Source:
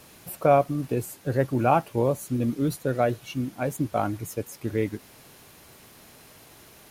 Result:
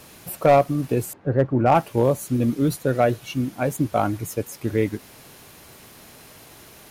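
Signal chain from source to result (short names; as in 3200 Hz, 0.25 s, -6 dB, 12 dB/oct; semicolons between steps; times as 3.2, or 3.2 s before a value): 1.13–1.75 LPF 1400 Hz 12 dB/oct; overloaded stage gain 13 dB; gain +4.5 dB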